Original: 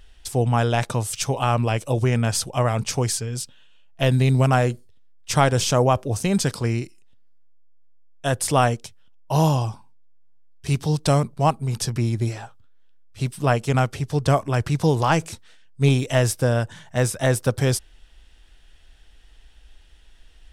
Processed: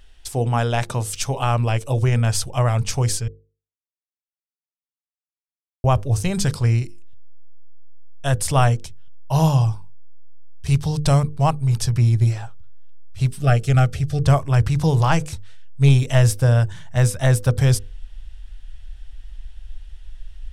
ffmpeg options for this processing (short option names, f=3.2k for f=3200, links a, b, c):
-filter_complex "[0:a]asettb=1/sr,asplit=3[a][b][c];[a]atrim=end=13.404[d];[b]atrim=start=13.4:end=14.22,asetpts=PTS-STARTPTS,afade=t=in:d=0.004:c=qsin,afade=t=out:st=0.816:d=0.004:c=qsin,asuperstop=centerf=970:order=12:qfactor=2.9[e];[c]atrim=start=14.216[f];[d][e]acrossfade=d=0.004:c1=hsin:c2=qsin[g];[g][f]acrossfade=d=0.004:c1=qsin:c2=hsin,asplit=3[h][i][j];[h]atrim=end=3.28,asetpts=PTS-STARTPTS,afade=t=out:st=3.276:d=0.004:c=hsin[k];[i]atrim=start=3.28:end=5.84,asetpts=PTS-STARTPTS,volume=0[l];[j]atrim=start=5.84,asetpts=PTS-STARTPTS,afade=t=in:d=0.004:c=hsin[m];[k][l][m]concat=n=3:v=0:a=1,asubboost=boost=7:cutoff=95,bandreject=f=50:t=h:w=6,bandreject=f=100:t=h:w=6,bandreject=f=150:t=h:w=6,bandreject=f=200:t=h:w=6,bandreject=f=250:t=h:w=6,bandreject=f=300:t=h:w=6,bandreject=f=350:t=h:w=6,bandreject=f=400:t=h:w=6,bandreject=f=450:t=h:w=6,bandreject=f=500:t=h:w=6"